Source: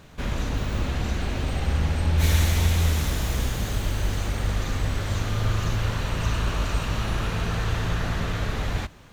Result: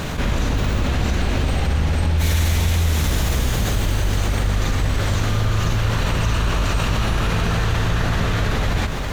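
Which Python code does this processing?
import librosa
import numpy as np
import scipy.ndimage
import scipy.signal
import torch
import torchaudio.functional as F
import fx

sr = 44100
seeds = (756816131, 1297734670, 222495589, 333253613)

y = x + 10.0 ** (-18.0 / 20.0) * np.pad(x, (int(405 * sr / 1000.0), 0))[:len(x)]
y = fx.env_flatten(y, sr, amount_pct=70)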